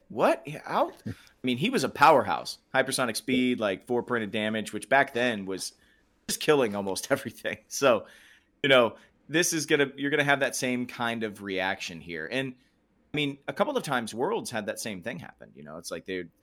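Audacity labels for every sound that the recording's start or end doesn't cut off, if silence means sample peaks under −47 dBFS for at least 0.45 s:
6.290000	12.530000	sound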